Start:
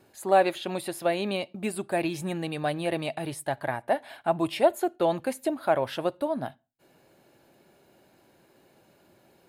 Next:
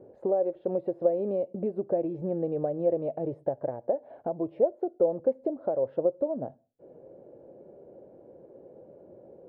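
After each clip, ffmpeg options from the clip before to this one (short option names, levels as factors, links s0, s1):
-af "acompressor=threshold=0.0141:ratio=4,lowpass=f=510:t=q:w=4.9,volume=1.58"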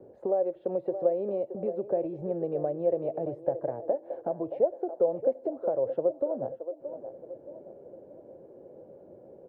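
-filter_complex "[0:a]acrossover=split=150|330[s0][s1][s2];[s1]acompressor=threshold=0.00562:ratio=6[s3];[s2]asplit=2[s4][s5];[s5]adelay=624,lowpass=f=910:p=1,volume=0.398,asplit=2[s6][s7];[s7]adelay=624,lowpass=f=910:p=1,volume=0.52,asplit=2[s8][s9];[s9]adelay=624,lowpass=f=910:p=1,volume=0.52,asplit=2[s10][s11];[s11]adelay=624,lowpass=f=910:p=1,volume=0.52,asplit=2[s12][s13];[s13]adelay=624,lowpass=f=910:p=1,volume=0.52,asplit=2[s14][s15];[s15]adelay=624,lowpass=f=910:p=1,volume=0.52[s16];[s4][s6][s8][s10][s12][s14][s16]amix=inputs=7:normalize=0[s17];[s0][s3][s17]amix=inputs=3:normalize=0"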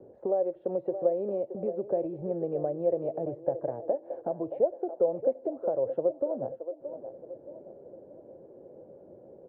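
-af "lowpass=f=1500:p=1"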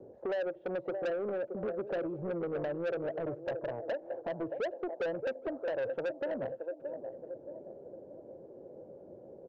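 -filter_complex "[0:a]aresample=16000,asoftclip=type=tanh:threshold=0.0316,aresample=44100,asplit=2[s0][s1];[s1]adelay=816.3,volume=0.0447,highshelf=f=4000:g=-18.4[s2];[s0][s2]amix=inputs=2:normalize=0"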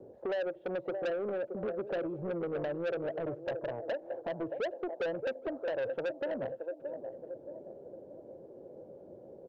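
-af "equalizer=f=3400:t=o:w=0.95:g=3.5"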